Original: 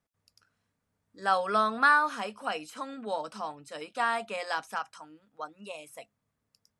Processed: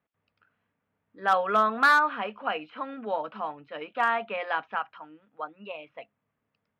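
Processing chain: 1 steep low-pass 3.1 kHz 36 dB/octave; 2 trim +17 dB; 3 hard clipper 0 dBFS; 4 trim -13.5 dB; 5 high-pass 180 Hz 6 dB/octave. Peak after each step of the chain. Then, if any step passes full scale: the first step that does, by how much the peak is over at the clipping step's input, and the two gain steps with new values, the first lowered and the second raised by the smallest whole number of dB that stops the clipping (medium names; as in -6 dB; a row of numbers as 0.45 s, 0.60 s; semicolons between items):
-11.0 dBFS, +6.0 dBFS, 0.0 dBFS, -13.5 dBFS, -12.0 dBFS; step 2, 6.0 dB; step 2 +11 dB, step 4 -7.5 dB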